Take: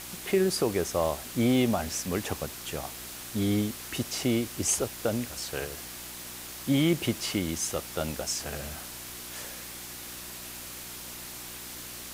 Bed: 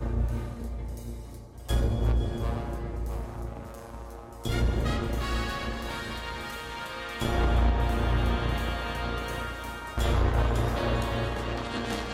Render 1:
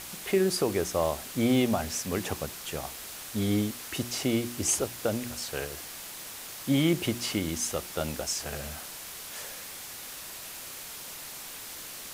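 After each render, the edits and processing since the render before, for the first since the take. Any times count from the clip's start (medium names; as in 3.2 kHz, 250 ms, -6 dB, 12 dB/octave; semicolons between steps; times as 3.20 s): de-hum 60 Hz, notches 6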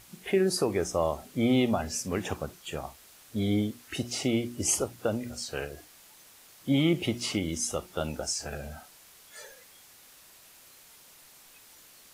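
noise print and reduce 13 dB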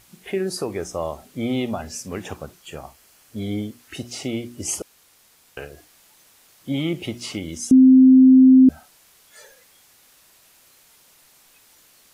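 2.61–3.80 s: band-stop 3.7 kHz, Q 11; 4.82–5.57 s: room tone; 7.71–8.69 s: bleep 260 Hz -7 dBFS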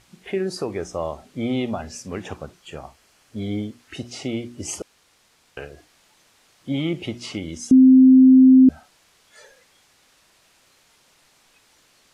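distance through air 55 m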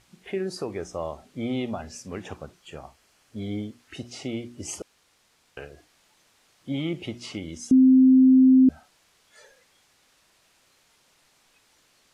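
trim -4.5 dB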